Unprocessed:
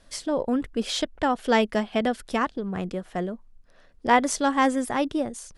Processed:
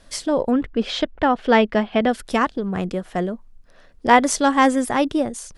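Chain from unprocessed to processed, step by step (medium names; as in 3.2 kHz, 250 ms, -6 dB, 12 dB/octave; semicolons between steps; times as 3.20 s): 0.51–2.09 s: low-pass 3.5 kHz 12 dB/octave; trim +5.5 dB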